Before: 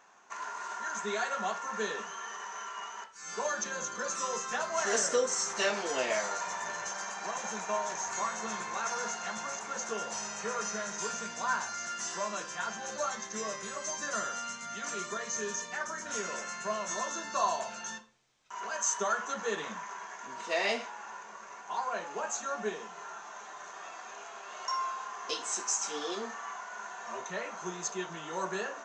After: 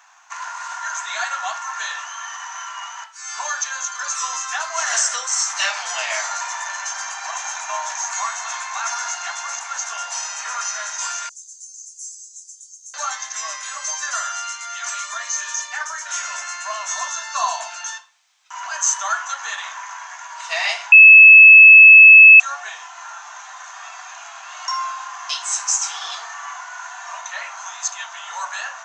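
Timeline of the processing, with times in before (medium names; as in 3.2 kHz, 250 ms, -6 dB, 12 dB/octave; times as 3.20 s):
11.29–12.94 s: inverse Chebyshev band-stop 150–2500 Hz, stop band 60 dB
20.92–22.40 s: bleep 2.6 kHz -13 dBFS
whole clip: steep high-pass 700 Hz 48 dB/octave; tilt shelf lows -3.5 dB, about 1.1 kHz; trim +8.5 dB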